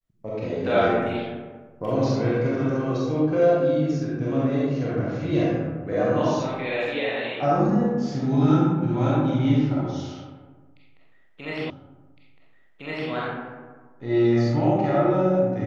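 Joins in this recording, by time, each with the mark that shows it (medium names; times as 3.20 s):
11.70 s: repeat of the last 1.41 s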